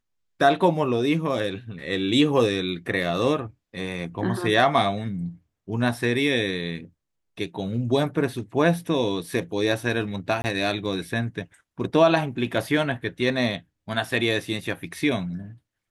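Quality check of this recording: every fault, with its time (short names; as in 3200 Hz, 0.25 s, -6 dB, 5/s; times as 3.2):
10.42–10.44 gap 20 ms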